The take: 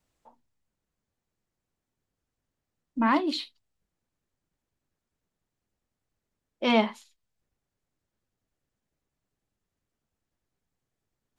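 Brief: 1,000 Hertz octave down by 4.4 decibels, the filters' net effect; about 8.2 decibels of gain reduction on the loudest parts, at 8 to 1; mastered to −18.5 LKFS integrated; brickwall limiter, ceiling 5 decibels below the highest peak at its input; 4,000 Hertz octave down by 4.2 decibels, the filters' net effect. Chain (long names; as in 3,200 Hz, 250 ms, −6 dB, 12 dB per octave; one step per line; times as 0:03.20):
parametric band 1,000 Hz −5 dB
parametric band 4,000 Hz −5 dB
downward compressor 8 to 1, threshold −28 dBFS
level +18.5 dB
brickwall limiter −7.5 dBFS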